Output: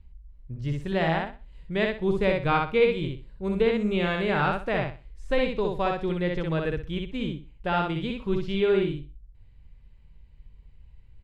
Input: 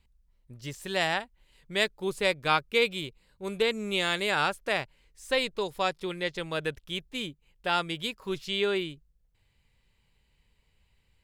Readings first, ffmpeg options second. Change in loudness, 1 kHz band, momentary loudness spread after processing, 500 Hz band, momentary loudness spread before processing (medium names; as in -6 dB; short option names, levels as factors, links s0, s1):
+2.5 dB, +2.5 dB, 10 LU, +5.0 dB, 13 LU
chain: -filter_complex "[0:a]acrossover=split=3800[s0][s1];[s1]acompressor=threshold=0.00501:ratio=4:attack=1:release=60[s2];[s0][s2]amix=inputs=2:normalize=0,aemphasis=mode=reproduction:type=riaa,asplit=2[s3][s4];[s4]aecho=0:1:62|124|186|248:0.708|0.177|0.0442|0.0111[s5];[s3][s5]amix=inputs=2:normalize=0"